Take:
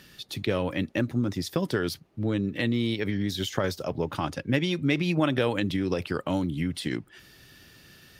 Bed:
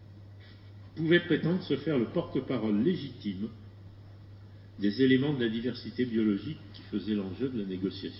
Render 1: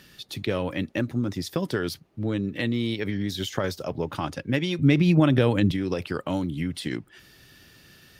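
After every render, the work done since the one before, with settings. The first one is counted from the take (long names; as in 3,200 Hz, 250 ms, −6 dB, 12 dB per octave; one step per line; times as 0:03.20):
0:04.79–0:05.72: low-shelf EQ 280 Hz +11.5 dB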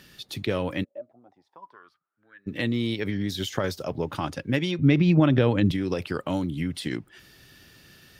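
0:00.83–0:02.46: resonant band-pass 530 Hz → 1,800 Hz, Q 14
0:04.71–0:05.66: high-frequency loss of the air 100 metres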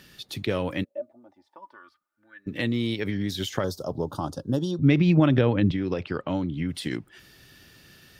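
0:00.94–0:02.48: comb filter 3.4 ms, depth 79%
0:03.64–0:04.83: Butterworth band-reject 2,200 Hz, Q 0.76
0:05.41–0:06.69: high-frequency loss of the air 150 metres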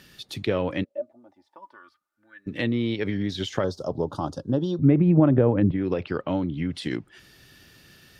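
treble cut that deepens with the level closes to 1,100 Hz, closed at −17 dBFS
dynamic equaliser 490 Hz, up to +3 dB, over −32 dBFS, Q 0.72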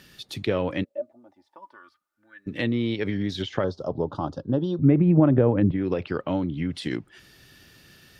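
0:03.42–0:05.29: low-pass filter 3,700 Hz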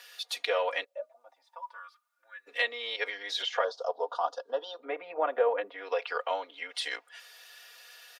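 Butterworth high-pass 550 Hz 36 dB per octave
comb filter 4.2 ms, depth 97%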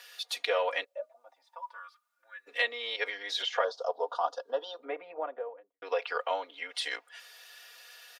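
0:04.65–0:05.82: fade out and dull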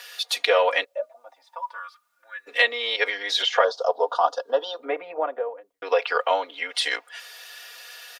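level +9.5 dB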